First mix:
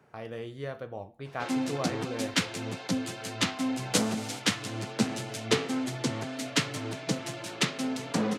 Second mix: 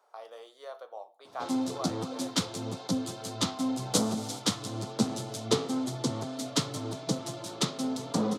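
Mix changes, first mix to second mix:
speech: add high-pass filter 590 Hz 24 dB per octave
master: add flat-topped bell 2,100 Hz −11.5 dB 1.1 octaves

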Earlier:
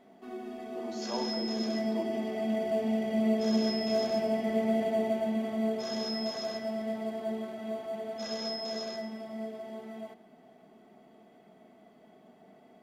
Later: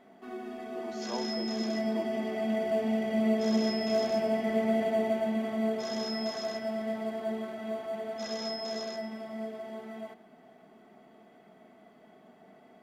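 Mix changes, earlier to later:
first sound: add parametric band 1,500 Hz +5 dB 1.3 octaves
second sound: add high-shelf EQ 5,000 Hz +7.5 dB
reverb: off

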